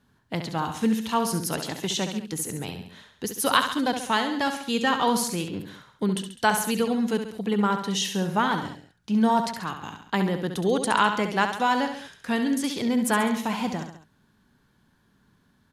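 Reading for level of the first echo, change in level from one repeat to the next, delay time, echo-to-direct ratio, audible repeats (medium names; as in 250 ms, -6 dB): -8.0 dB, -5.5 dB, 68 ms, -6.5 dB, 3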